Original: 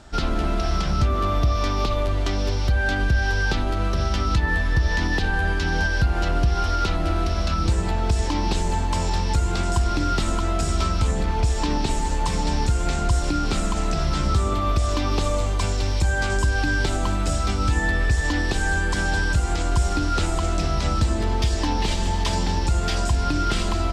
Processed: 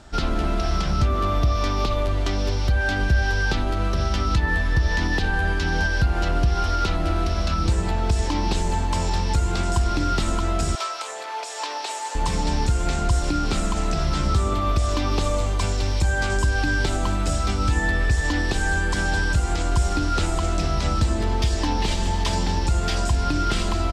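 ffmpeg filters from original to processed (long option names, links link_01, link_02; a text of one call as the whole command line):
ffmpeg -i in.wav -filter_complex "[0:a]asplit=2[link_01][link_02];[link_02]afade=type=in:start_time=2.37:duration=0.01,afade=type=out:start_time=2.79:duration=0.01,aecho=0:1:430|860:0.316228|0.0316228[link_03];[link_01][link_03]amix=inputs=2:normalize=0,asettb=1/sr,asplit=3[link_04][link_05][link_06];[link_04]atrim=end=10.754[link_07];[link_05]atrim=start=10.75:end=12.15,asetpts=PTS-STARTPTS,afade=type=in:duration=0.004:curve=qsin,afade=type=out:start_time=1.396:duration=0.004:curve=qsin,highpass=frequency=550:width=0.5412,highpass=frequency=550:width=1.3066[link_08];[link_06]atrim=start=12.146[link_09];[link_07][link_08]acrossfade=duration=0.004:curve1=hsin:curve2=qsin[link_10];[link_10][link_09]acrossfade=duration=0.004:curve1=qsin:curve2=hsin" out.wav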